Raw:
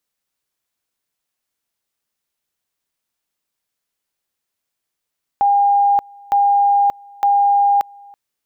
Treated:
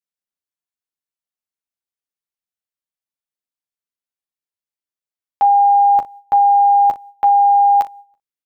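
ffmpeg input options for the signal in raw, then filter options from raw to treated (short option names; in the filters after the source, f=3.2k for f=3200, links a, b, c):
-f lavfi -i "aevalsrc='pow(10,(-10.5-27.5*gte(mod(t,0.91),0.58))/20)*sin(2*PI*807*t)':d=2.73:s=44100"
-filter_complex "[0:a]agate=range=-17dB:threshold=-37dB:ratio=16:detection=peak,asplit=2[a][b];[b]aecho=0:1:11|38|59:0.562|0.178|0.15[c];[a][c]amix=inputs=2:normalize=0"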